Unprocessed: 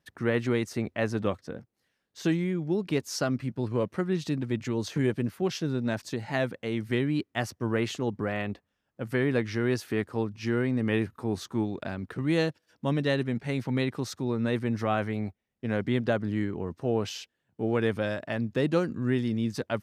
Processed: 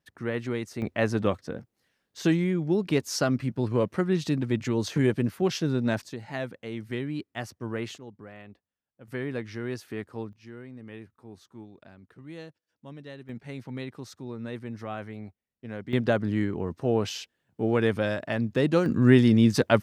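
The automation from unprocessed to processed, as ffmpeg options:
-af "asetnsamples=n=441:p=0,asendcmd='0.82 volume volume 3dB;6.04 volume volume -5dB;7.98 volume volume -15dB;9.08 volume volume -6.5dB;10.33 volume volume -16.5dB;13.29 volume volume -8.5dB;15.93 volume volume 2.5dB;18.86 volume volume 9.5dB',volume=0.631"

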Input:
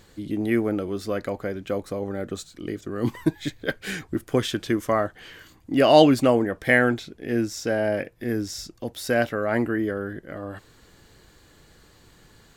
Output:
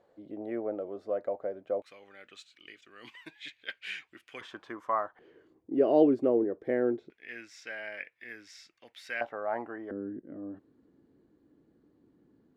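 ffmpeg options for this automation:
-af "asetnsamples=n=441:p=0,asendcmd='1.82 bandpass f 2600;4.41 bandpass f 1000;5.19 bandpass f 390;7.1 bandpass f 2200;9.21 bandpass f 830;9.91 bandpass f 280',bandpass=f=610:t=q:w=3.3:csg=0"

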